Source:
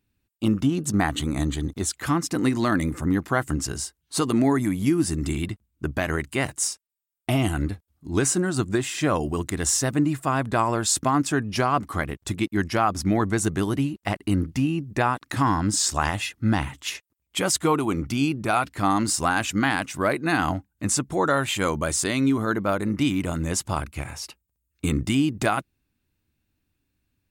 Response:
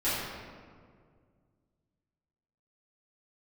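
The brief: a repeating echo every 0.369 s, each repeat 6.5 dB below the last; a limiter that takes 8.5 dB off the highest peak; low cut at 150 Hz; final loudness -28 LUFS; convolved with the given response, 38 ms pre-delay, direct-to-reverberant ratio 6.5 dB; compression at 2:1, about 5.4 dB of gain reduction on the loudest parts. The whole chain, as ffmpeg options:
-filter_complex "[0:a]highpass=150,acompressor=threshold=-27dB:ratio=2,alimiter=limit=-18dB:level=0:latency=1,aecho=1:1:369|738|1107|1476|1845|2214:0.473|0.222|0.105|0.0491|0.0231|0.0109,asplit=2[a][b];[1:a]atrim=start_sample=2205,adelay=38[c];[b][c]afir=irnorm=-1:irlink=0,volume=-17.5dB[d];[a][d]amix=inputs=2:normalize=0,volume=0.5dB"

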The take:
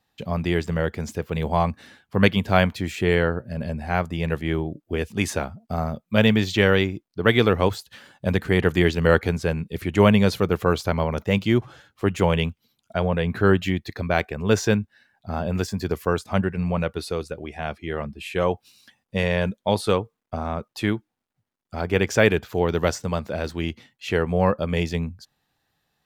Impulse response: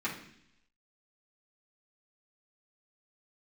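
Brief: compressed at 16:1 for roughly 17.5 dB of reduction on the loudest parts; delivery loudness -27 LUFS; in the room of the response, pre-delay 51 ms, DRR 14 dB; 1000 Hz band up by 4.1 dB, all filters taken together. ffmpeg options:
-filter_complex "[0:a]equalizer=f=1k:t=o:g=5.5,acompressor=threshold=-27dB:ratio=16,asplit=2[a][b];[1:a]atrim=start_sample=2205,adelay=51[c];[b][c]afir=irnorm=-1:irlink=0,volume=-20dB[d];[a][d]amix=inputs=2:normalize=0,volume=7dB"

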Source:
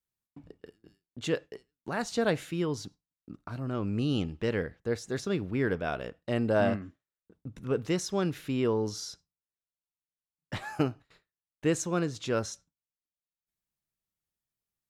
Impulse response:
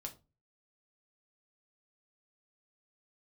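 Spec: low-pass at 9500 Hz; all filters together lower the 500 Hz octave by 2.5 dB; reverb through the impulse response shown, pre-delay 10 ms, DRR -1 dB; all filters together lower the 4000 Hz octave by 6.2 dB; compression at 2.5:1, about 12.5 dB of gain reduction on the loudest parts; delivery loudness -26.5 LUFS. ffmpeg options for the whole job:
-filter_complex "[0:a]lowpass=9.5k,equalizer=f=500:t=o:g=-3,equalizer=f=4k:t=o:g=-9,acompressor=threshold=-42dB:ratio=2.5,asplit=2[a][b];[1:a]atrim=start_sample=2205,adelay=10[c];[b][c]afir=irnorm=-1:irlink=0,volume=4dB[d];[a][d]amix=inputs=2:normalize=0,volume=13dB"

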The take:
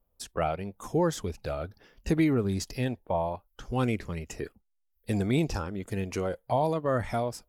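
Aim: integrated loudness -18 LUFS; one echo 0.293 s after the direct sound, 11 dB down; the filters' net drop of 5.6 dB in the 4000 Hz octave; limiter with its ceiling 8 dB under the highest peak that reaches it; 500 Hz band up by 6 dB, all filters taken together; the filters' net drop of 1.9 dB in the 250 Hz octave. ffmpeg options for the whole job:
-af "equalizer=f=250:t=o:g=-6.5,equalizer=f=500:t=o:g=9,equalizer=f=4k:t=o:g=-7.5,alimiter=limit=-19.5dB:level=0:latency=1,aecho=1:1:293:0.282,volume=12.5dB"

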